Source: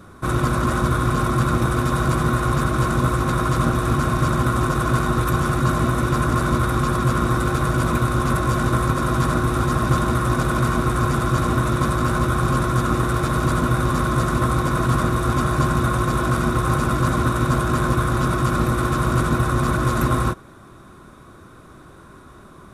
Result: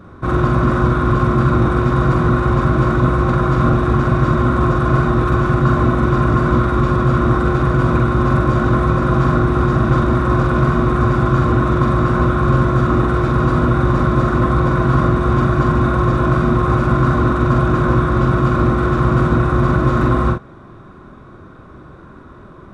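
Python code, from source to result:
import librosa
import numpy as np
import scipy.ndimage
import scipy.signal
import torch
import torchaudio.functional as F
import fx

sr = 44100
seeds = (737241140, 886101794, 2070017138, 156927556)

y = fx.spacing_loss(x, sr, db_at_10k=25)
y = fx.doubler(y, sr, ms=45.0, db=-3)
y = y * 10.0 ** (4.5 / 20.0)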